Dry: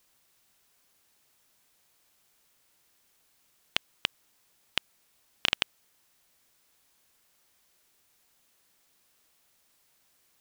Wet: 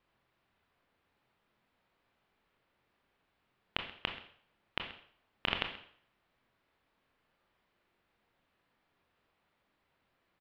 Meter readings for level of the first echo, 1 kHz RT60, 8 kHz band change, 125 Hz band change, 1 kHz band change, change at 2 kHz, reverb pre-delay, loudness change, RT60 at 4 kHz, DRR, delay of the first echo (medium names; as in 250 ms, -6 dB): -18.0 dB, 0.60 s, under -25 dB, +1.5 dB, -0.5 dB, -4.5 dB, 21 ms, -6.5 dB, 0.55 s, 4.5 dB, 131 ms